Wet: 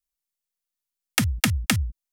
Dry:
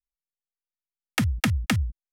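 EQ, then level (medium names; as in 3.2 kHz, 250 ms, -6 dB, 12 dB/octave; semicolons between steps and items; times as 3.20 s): treble shelf 3.6 kHz +10 dB; 0.0 dB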